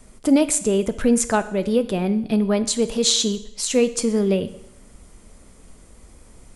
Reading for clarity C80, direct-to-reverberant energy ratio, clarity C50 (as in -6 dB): 17.5 dB, 11.5 dB, 15.0 dB